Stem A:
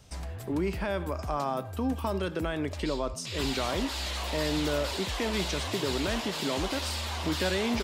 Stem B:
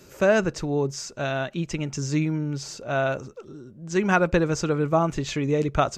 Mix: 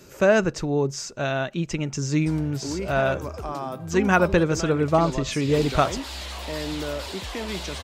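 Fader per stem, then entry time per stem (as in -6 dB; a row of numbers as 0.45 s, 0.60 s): -1.0 dB, +1.5 dB; 2.15 s, 0.00 s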